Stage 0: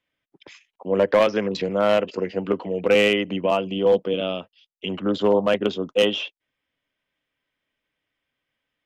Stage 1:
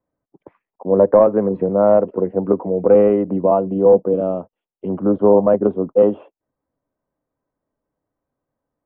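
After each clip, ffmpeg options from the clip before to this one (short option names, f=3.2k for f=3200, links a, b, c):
-af "lowpass=f=1k:w=0.5412,lowpass=f=1k:w=1.3066,volume=6.5dB"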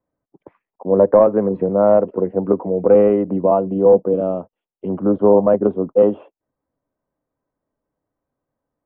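-af anull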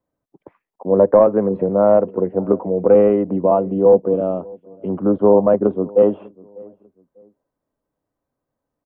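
-filter_complex "[0:a]asplit=2[a][b];[b]adelay=596,lowpass=f=1k:p=1,volume=-23.5dB,asplit=2[c][d];[d]adelay=596,lowpass=f=1k:p=1,volume=0.3[e];[a][c][e]amix=inputs=3:normalize=0"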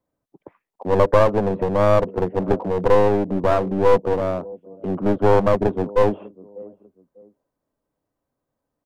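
-af "aeval=exprs='clip(val(0),-1,0.0668)':c=same"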